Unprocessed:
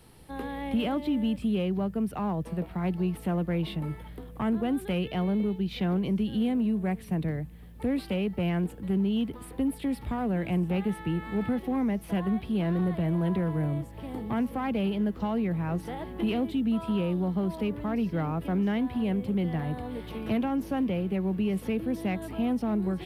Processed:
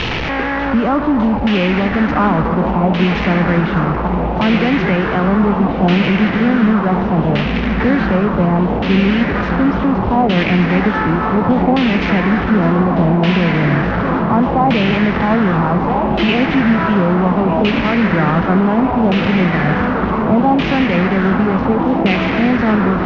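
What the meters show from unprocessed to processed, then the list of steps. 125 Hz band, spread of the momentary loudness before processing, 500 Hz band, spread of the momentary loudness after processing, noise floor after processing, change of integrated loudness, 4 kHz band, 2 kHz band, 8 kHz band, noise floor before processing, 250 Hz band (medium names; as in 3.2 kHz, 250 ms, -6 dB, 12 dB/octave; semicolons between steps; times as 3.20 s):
+14.5 dB, 6 LU, +15.5 dB, 3 LU, -18 dBFS, +15.0 dB, +18.0 dB, +23.5 dB, no reading, -45 dBFS, +14.0 dB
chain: one-bit delta coder 32 kbps, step -28 dBFS; in parallel at 0 dB: peak limiter -24 dBFS, peak gain reduction 7 dB; on the sum: echo that smears into a reverb 1109 ms, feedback 65%, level -7.5 dB; LFO low-pass saw down 0.68 Hz 780–2900 Hz; modulated delay 599 ms, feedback 73%, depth 187 cents, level -17 dB; trim +8 dB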